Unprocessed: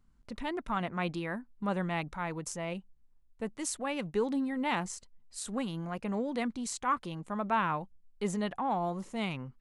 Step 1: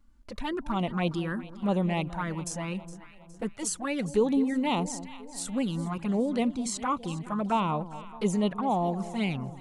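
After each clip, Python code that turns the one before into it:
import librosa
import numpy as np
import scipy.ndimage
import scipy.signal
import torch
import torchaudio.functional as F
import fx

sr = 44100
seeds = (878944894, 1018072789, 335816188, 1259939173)

y = fx.env_flanger(x, sr, rest_ms=3.6, full_db=-28.0)
y = fx.echo_alternate(y, sr, ms=207, hz=870.0, feedback_pct=67, wet_db=-13)
y = fx.dynamic_eq(y, sr, hz=1900.0, q=2.0, threshold_db=-55.0, ratio=4.0, max_db=-4)
y = y * 10.0 ** (7.0 / 20.0)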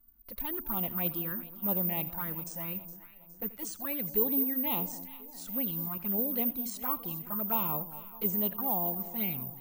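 y = x + 10.0 ** (-17.5 / 20.0) * np.pad(x, (int(84 * sr / 1000.0), 0))[:len(x)]
y = (np.kron(scipy.signal.resample_poly(y, 1, 3), np.eye(3)[0]) * 3)[:len(y)]
y = y * 10.0 ** (-8.5 / 20.0)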